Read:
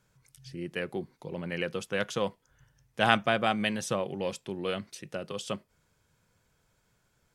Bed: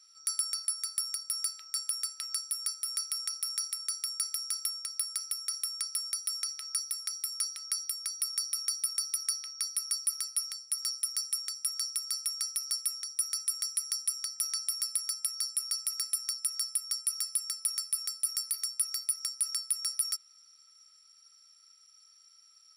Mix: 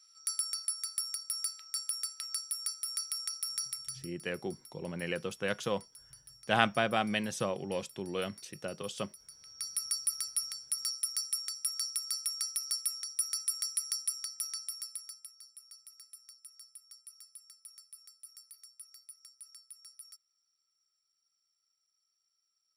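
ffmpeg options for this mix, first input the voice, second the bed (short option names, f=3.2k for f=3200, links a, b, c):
-filter_complex "[0:a]adelay=3500,volume=-3dB[a];[1:a]volume=17.5dB,afade=t=out:st=3.69:d=0.43:silence=0.112202,afade=t=in:st=9.36:d=0.45:silence=0.1,afade=t=out:st=13.91:d=1.44:silence=0.112202[b];[a][b]amix=inputs=2:normalize=0"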